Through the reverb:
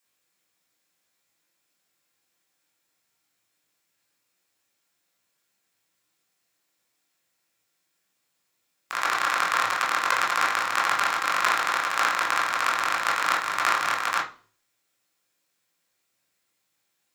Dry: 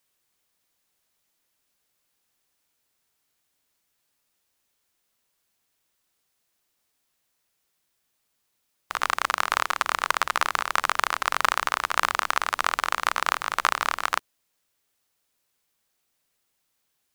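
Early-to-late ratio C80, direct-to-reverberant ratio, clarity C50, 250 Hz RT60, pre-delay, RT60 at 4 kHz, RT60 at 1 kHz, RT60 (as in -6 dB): 15.0 dB, -3.5 dB, 8.5 dB, 0.50 s, 17 ms, 0.40 s, 0.35 s, 0.40 s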